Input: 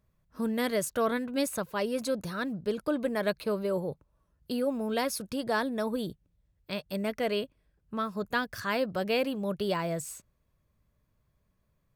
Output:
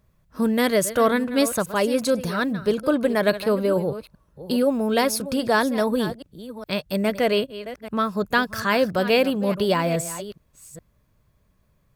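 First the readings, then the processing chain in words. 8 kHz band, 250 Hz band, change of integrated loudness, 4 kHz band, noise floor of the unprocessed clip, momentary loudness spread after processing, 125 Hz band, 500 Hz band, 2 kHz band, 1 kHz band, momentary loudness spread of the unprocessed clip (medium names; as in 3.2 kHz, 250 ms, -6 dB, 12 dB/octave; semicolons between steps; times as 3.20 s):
+9.0 dB, +9.0 dB, +9.0 dB, +9.0 dB, -74 dBFS, 11 LU, +9.0 dB, +9.0 dB, +9.0 dB, +9.0 dB, 9 LU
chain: chunks repeated in reverse 415 ms, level -13.5 dB; trim +9 dB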